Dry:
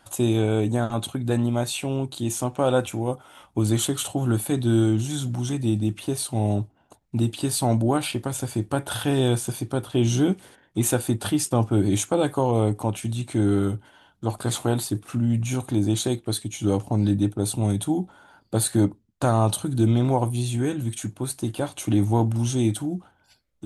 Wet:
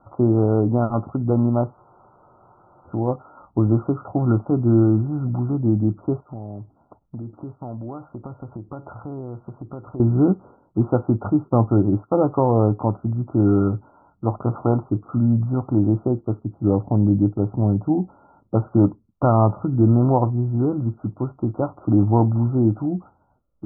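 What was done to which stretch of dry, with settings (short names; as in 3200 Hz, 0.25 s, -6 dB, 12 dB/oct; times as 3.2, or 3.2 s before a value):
1.76 spectral freeze 1.10 s
6.2–10 compressor 4:1, threshold -36 dBFS
11.74–12.17 upward expander, over -38 dBFS
15.89–18.55 Bessel low-pass 950 Hz
whole clip: Chebyshev low-pass 1400 Hz, order 10; gain +4.5 dB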